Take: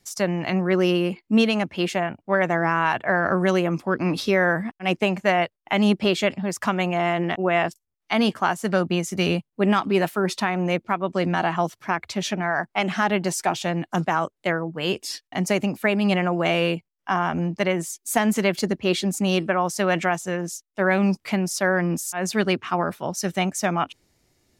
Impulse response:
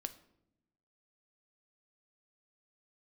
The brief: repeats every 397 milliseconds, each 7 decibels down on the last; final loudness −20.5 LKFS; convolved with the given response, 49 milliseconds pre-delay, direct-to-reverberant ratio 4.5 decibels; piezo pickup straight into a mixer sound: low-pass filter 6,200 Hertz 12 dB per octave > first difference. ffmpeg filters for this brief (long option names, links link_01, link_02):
-filter_complex "[0:a]aecho=1:1:397|794|1191|1588|1985:0.447|0.201|0.0905|0.0407|0.0183,asplit=2[link_01][link_02];[1:a]atrim=start_sample=2205,adelay=49[link_03];[link_02][link_03]afir=irnorm=-1:irlink=0,volume=-2.5dB[link_04];[link_01][link_04]amix=inputs=2:normalize=0,lowpass=6200,aderivative,volume=15.5dB"